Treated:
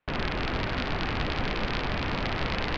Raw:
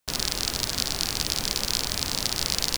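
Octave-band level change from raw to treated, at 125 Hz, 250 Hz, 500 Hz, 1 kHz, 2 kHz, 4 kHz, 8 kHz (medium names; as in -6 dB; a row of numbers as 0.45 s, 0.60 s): +5.0 dB, +5.0 dB, +5.0 dB, +5.0 dB, +4.0 dB, -10.0 dB, -28.0 dB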